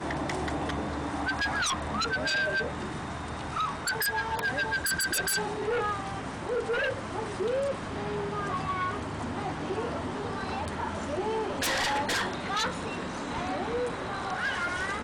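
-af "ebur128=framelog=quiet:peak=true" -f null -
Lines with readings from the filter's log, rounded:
Integrated loudness:
  I:         -30.4 LUFS
  Threshold: -40.4 LUFS
Loudness range:
  LRA:         3.2 LU
  Threshold: -50.3 LUFS
  LRA low:   -32.4 LUFS
  LRA high:  -29.1 LUFS
True peak:
  Peak:      -22.5 dBFS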